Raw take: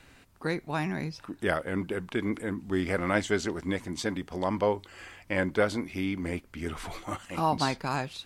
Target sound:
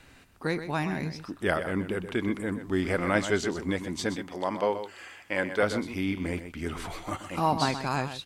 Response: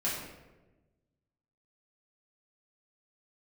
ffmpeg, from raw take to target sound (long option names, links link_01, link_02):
-filter_complex "[0:a]asettb=1/sr,asplit=3[link_01][link_02][link_03];[link_01]atrim=end=4.164[link_04];[link_02]atrim=start=4.16:end=5.63,asetpts=PTS-STARTPTS,afade=type=in:duration=0.004:curve=qsin,afade=type=out:start_time=1.466:duration=0.004:curve=qsin,highpass=frequency=370:poles=1[link_05];[link_03]atrim=start=5.626[link_06];[link_04][link_05]acrossfade=duration=0.004:curve1=hsin:curve2=qsin[link_07];[link_07][link_06]acrossfade=duration=0.004:curve1=qsin:curve2=hsin,asplit=2[link_08][link_09];[link_09]aecho=0:1:126:0.299[link_10];[link_08][link_10]amix=inputs=2:normalize=0,volume=1dB"